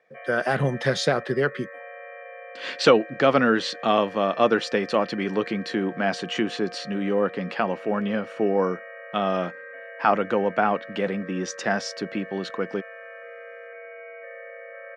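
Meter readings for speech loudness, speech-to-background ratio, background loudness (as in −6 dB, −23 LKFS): −24.5 LKFS, 16.0 dB, −40.5 LKFS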